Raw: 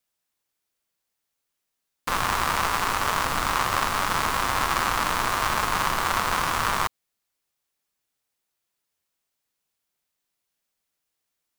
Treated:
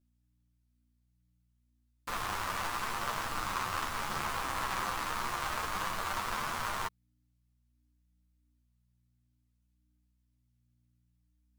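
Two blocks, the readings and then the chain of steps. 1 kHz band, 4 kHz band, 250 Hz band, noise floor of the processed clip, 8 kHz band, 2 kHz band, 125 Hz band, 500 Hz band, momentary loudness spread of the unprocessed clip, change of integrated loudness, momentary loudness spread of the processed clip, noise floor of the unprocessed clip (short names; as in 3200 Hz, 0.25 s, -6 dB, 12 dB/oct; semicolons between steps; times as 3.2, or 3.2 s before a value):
-11.0 dB, -11.0 dB, -10.5 dB, -74 dBFS, -11.0 dB, -11.0 dB, -10.5 dB, -11.0 dB, 2 LU, -11.0 dB, 2 LU, -81 dBFS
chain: hum 60 Hz, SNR 34 dB; chorus voices 4, 0.29 Hz, delay 12 ms, depth 3.6 ms; gain -8 dB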